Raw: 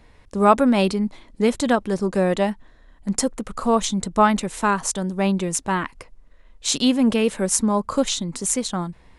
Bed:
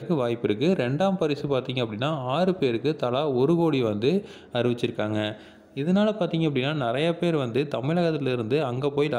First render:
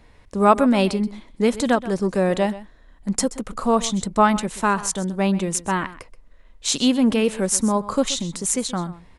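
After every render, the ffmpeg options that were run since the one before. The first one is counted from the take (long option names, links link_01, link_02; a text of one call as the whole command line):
ffmpeg -i in.wav -af "aecho=1:1:128:0.15" out.wav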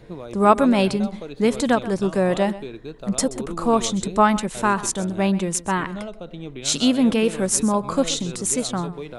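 ffmpeg -i in.wav -i bed.wav -filter_complex "[1:a]volume=-11dB[link_01];[0:a][link_01]amix=inputs=2:normalize=0" out.wav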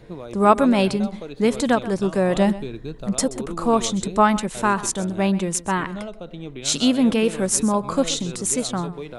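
ffmpeg -i in.wav -filter_complex "[0:a]asettb=1/sr,asplit=3[link_01][link_02][link_03];[link_01]atrim=end=2.364[link_04];[link_02]atrim=start=2.36:end=3.07,asetpts=PTS-STARTPTS,afade=type=in:duration=0.004:curve=qsin,afade=type=out:start_time=0.706:duration=0.004:curve=qsin,bass=frequency=250:gain=8,treble=frequency=4000:gain=3[link_05];[link_03]atrim=start=3.066[link_06];[link_04][link_05]acrossfade=duration=0.004:curve1=hsin:curve2=qsin[link_07];[link_07][link_06]acrossfade=duration=0.004:curve1=qsin:curve2=hsin" out.wav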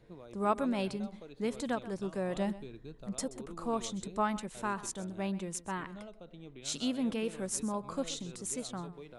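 ffmpeg -i in.wav -af "volume=-15dB" out.wav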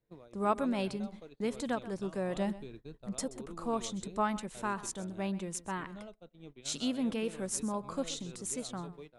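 ffmpeg -i in.wav -af "agate=range=-22dB:threshold=-48dB:ratio=16:detection=peak" out.wav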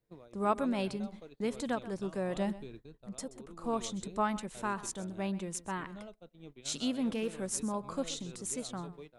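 ffmpeg -i in.wav -filter_complex "[0:a]asettb=1/sr,asplit=3[link_01][link_02][link_03];[link_01]atrim=end=6.924[link_04];[link_02]atrim=start=6.92:end=7.33,asetpts=PTS-STARTPTS,afade=type=in:duration=0.004:curve=qsin,afade=type=out:start_time=0.406:duration=0.004:curve=qsin,volume=26.5dB,asoftclip=hard,volume=-26.5dB[link_05];[link_03]atrim=start=7.326[link_06];[link_04][link_05]acrossfade=duration=0.004:curve1=hsin:curve2=qsin[link_07];[link_07][link_06]acrossfade=duration=0.004:curve1=qsin:curve2=hsin,asplit=3[link_08][link_09][link_10];[link_08]atrim=end=2.862[link_11];[link_09]atrim=start=2.858:end=3.642,asetpts=PTS-STARTPTS,volume=-5dB[link_12];[link_10]atrim=start=3.638[link_13];[link_11][link_12]acrossfade=duration=0.004:curve1=hsin:curve2=hsin[link_14];[link_14][link_13]acrossfade=duration=0.004:curve1=hsin:curve2=hsin" out.wav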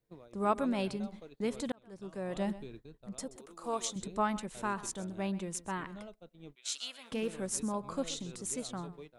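ffmpeg -i in.wav -filter_complex "[0:a]asettb=1/sr,asplit=3[link_01][link_02][link_03];[link_01]atrim=end=3.364[link_04];[link_02]atrim=start=3.36:end=3.96,asetpts=PTS-STARTPTS,afade=type=in:duration=0.004:curve=qsin,afade=type=out:start_time=0.596:duration=0.004:curve=qsin,bass=frequency=250:gain=-14,treble=frequency=4000:gain=6[link_05];[link_03]atrim=start=3.956[link_06];[link_04][link_05]acrossfade=duration=0.004:curve1=hsin:curve2=qsin[link_07];[link_07][link_06]acrossfade=duration=0.004:curve1=qsin:curve2=hsin,asettb=1/sr,asplit=3[link_08][link_09][link_10];[link_08]atrim=end=6.554[link_11];[link_09]atrim=start=6.55:end=7.12,asetpts=PTS-STARTPTS,afade=type=in:duration=0.004:curve=qsin,afade=type=out:start_time=0.566:duration=0.004:curve=qsin,highpass=1400[link_12];[link_10]atrim=start=7.116[link_13];[link_11][link_12]acrossfade=duration=0.004:curve1=hsin:curve2=qsin[link_14];[link_14][link_13]acrossfade=duration=0.004:curve1=qsin:curve2=hsin,asplit=2[link_15][link_16];[link_15]atrim=end=1.72,asetpts=PTS-STARTPTS,afade=type=out:start_time=1.716:duration=0.004:curve=hsin[link_17];[link_16]atrim=start=1.72,asetpts=PTS-STARTPTS,afade=type=in:duration=0.8[link_18];[link_17][link_18]concat=n=2:v=0:a=1" out.wav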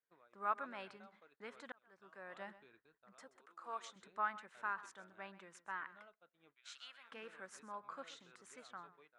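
ffmpeg -i in.wav -af "bandpass=frequency=1500:width_type=q:width=2.5:csg=0" out.wav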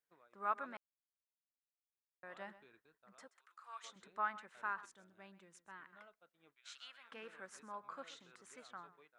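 ffmpeg -i in.wav -filter_complex "[0:a]asplit=3[link_01][link_02][link_03];[link_01]afade=type=out:start_time=3.27:duration=0.02[link_04];[link_02]highpass=1400,afade=type=in:start_time=3.27:duration=0.02,afade=type=out:start_time=3.83:duration=0.02[link_05];[link_03]afade=type=in:start_time=3.83:duration=0.02[link_06];[link_04][link_05][link_06]amix=inputs=3:normalize=0,asettb=1/sr,asplit=3[link_07][link_08][link_09];[link_07]atrim=end=4.854[link_10];[link_08]atrim=start=4.85:end=5.93,asetpts=PTS-STARTPTS,afade=type=in:duration=0.004:curve=qsin,afade=type=out:start_time=1.076:duration=0.004:curve=qsin,equalizer=frequency=1200:width=0.43:gain=-11[link_11];[link_09]atrim=start=5.926[link_12];[link_10][link_11]acrossfade=duration=0.004:curve1=hsin:curve2=qsin[link_13];[link_13][link_12]acrossfade=duration=0.004:curve1=qsin:curve2=hsin,asplit=3[link_14][link_15][link_16];[link_14]atrim=end=0.77,asetpts=PTS-STARTPTS,afade=type=out:start_time=0.766:duration=0.004:curve=hsin[link_17];[link_15]atrim=start=0.77:end=2.23,asetpts=PTS-STARTPTS,volume=0[link_18];[link_16]atrim=start=2.23,asetpts=PTS-STARTPTS,afade=type=in:duration=0.004:curve=hsin[link_19];[link_17][link_18][link_19]concat=n=3:v=0:a=1" out.wav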